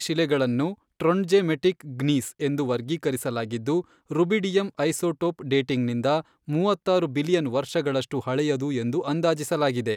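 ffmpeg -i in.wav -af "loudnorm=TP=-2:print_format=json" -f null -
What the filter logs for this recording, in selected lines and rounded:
"input_i" : "-25.1",
"input_tp" : "-9.3",
"input_lra" : "1.1",
"input_thresh" : "-35.1",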